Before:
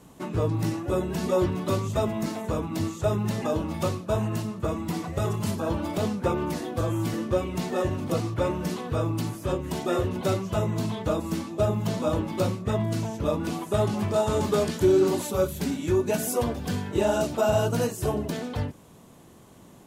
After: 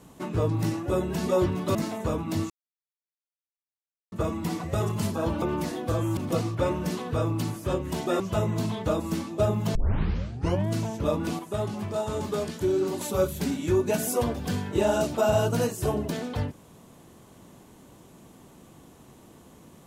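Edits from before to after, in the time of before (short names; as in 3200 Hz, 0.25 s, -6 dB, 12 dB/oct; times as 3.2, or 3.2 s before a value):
1.75–2.19 cut
2.94–4.56 mute
5.86–6.31 cut
7.06–7.96 cut
9.99–10.4 cut
11.95 tape start 0.94 s
13.59–15.21 gain -5.5 dB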